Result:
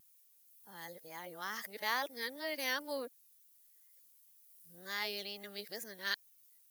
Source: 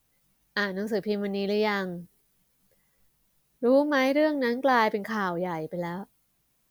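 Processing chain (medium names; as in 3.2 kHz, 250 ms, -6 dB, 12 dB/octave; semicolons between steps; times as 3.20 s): reverse the whole clip; pre-emphasis filter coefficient 0.97; vibrato 2.1 Hz 48 cents; trim +3 dB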